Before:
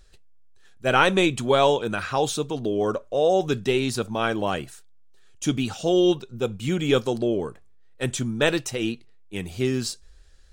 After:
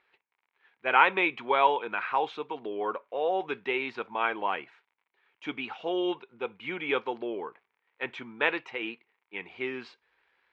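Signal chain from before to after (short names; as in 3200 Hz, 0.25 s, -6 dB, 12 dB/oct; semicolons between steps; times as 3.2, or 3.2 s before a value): crackle 77/s -50 dBFS; speaker cabinet 490–2800 Hz, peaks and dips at 600 Hz -7 dB, 940 Hz +8 dB, 2200 Hz +8 dB; gain -3.5 dB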